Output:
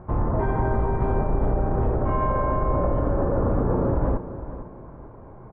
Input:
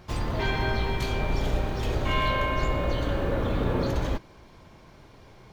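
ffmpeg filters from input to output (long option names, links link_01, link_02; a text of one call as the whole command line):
ffmpeg -i in.wav -af "lowpass=frequency=1200:width=0.5412,lowpass=frequency=1200:width=1.3066,alimiter=limit=-21.5dB:level=0:latency=1:release=81,aecho=1:1:456|912|1368:0.224|0.0716|0.0229,volume=7.5dB" out.wav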